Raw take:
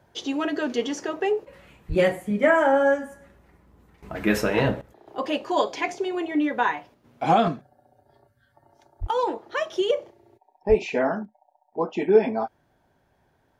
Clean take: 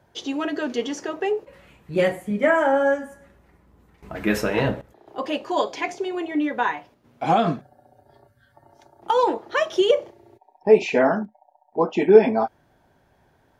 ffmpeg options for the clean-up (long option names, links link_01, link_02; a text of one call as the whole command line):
ffmpeg -i in.wav -filter_complex "[0:a]asplit=3[link_01][link_02][link_03];[link_01]afade=type=out:start_time=1.88:duration=0.02[link_04];[link_02]highpass=frequency=140:width=0.5412,highpass=frequency=140:width=1.3066,afade=type=in:start_time=1.88:duration=0.02,afade=type=out:start_time=2:duration=0.02[link_05];[link_03]afade=type=in:start_time=2:duration=0.02[link_06];[link_04][link_05][link_06]amix=inputs=3:normalize=0,asplit=3[link_07][link_08][link_09];[link_07]afade=type=out:start_time=9:duration=0.02[link_10];[link_08]highpass=frequency=140:width=0.5412,highpass=frequency=140:width=1.3066,afade=type=in:start_time=9:duration=0.02,afade=type=out:start_time=9.12:duration=0.02[link_11];[link_09]afade=type=in:start_time=9.12:duration=0.02[link_12];[link_10][link_11][link_12]amix=inputs=3:normalize=0,asplit=3[link_13][link_14][link_15];[link_13]afade=type=out:start_time=10.68:duration=0.02[link_16];[link_14]highpass=frequency=140:width=0.5412,highpass=frequency=140:width=1.3066,afade=type=in:start_time=10.68:duration=0.02,afade=type=out:start_time=10.8:duration=0.02[link_17];[link_15]afade=type=in:start_time=10.8:duration=0.02[link_18];[link_16][link_17][link_18]amix=inputs=3:normalize=0,asetnsamples=nb_out_samples=441:pad=0,asendcmd='7.48 volume volume 5dB',volume=0dB" out.wav